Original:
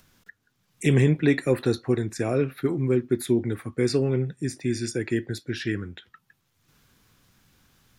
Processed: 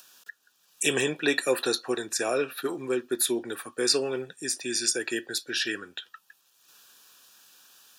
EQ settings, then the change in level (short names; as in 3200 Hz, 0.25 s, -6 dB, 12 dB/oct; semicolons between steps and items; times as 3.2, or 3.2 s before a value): HPF 520 Hz 12 dB/oct; Butterworth band-stop 2100 Hz, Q 4.1; high shelf 2200 Hz +9.5 dB; +2.0 dB